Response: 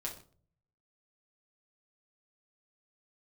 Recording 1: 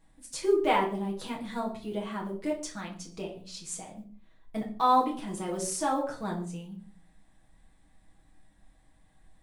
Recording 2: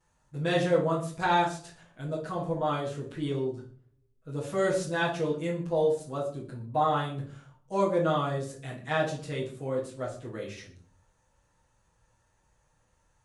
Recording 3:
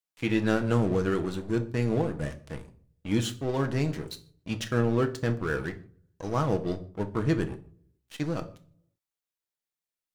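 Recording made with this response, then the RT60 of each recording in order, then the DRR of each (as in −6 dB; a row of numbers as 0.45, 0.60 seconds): 1; 0.45 s, 0.45 s, non-exponential decay; −3.0, −11.5, 6.5 decibels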